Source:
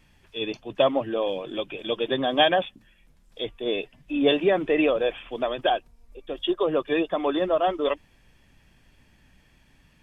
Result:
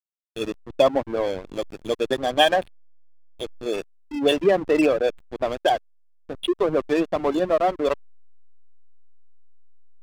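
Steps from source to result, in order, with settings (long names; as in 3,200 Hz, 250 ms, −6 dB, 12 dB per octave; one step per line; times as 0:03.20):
gate on every frequency bin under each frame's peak −25 dB strong
0:02.13–0:04.37: parametric band 150 Hz −5.5 dB 2.5 octaves
slack as between gear wheels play −24.5 dBFS
level +3.5 dB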